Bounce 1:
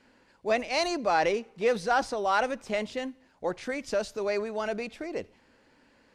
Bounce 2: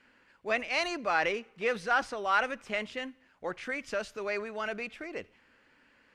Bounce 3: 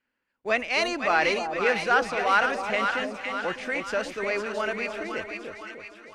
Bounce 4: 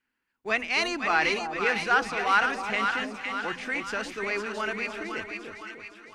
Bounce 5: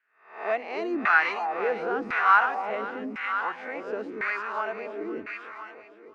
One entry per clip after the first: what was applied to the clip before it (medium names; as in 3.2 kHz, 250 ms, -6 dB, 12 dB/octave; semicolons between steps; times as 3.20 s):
high-order bell 1.9 kHz +8 dB; trim -6 dB
gate -54 dBFS, range -22 dB; two-band feedback delay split 900 Hz, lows 302 ms, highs 508 ms, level -5 dB; trim +5 dB
peaking EQ 570 Hz -11.5 dB 0.44 oct; hum notches 60/120/180/240 Hz
reverse spectral sustain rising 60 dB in 0.48 s; LFO band-pass saw down 0.95 Hz 270–1700 Hz; trim +5.5 dB